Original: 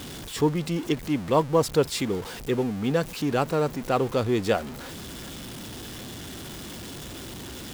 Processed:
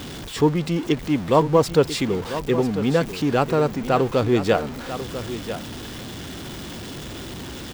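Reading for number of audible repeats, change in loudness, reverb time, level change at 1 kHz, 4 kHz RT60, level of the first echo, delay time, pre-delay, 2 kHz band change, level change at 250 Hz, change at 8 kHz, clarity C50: 1, +4.5 dB, no reverb audible, +4.5 dB, no reverb audible, −11.5 dB, 994 ms, no reverb audible, +4.5 dB, +5.0 dB, +0.5 dB, no reverb audible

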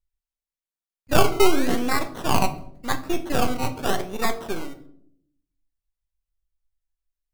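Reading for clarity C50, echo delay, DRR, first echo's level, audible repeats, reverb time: 13.5 dB, no echo audible, 7.0 dB, no echo audible, no echo audible, 0.65 s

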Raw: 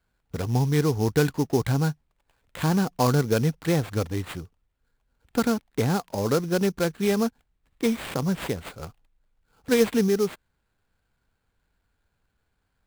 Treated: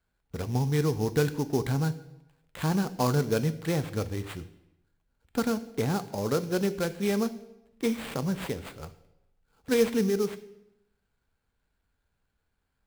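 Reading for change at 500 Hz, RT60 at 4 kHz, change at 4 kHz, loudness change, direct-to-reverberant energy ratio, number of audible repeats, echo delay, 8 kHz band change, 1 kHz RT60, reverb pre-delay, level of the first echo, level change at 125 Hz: −3.5 dB, 0.75 s, −4.0 dB, −4.0 dB, 11.5 dB, no echo audible, no echo audible, −4.0 dB, 0.95 s, 3 ms, no echo audible, −4.0 dB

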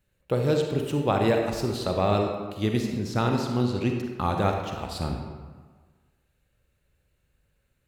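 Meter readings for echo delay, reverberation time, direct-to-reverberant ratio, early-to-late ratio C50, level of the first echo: no echo audible, 1.5 s, 2.5 dB, 3.5 dB, no echo audible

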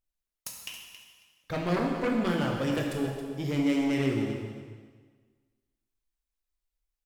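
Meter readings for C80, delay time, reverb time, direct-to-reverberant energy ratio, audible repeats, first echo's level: 3.5 dB, 273 ms, 1.5 s, −0.5 dB, 2, −11.5 dB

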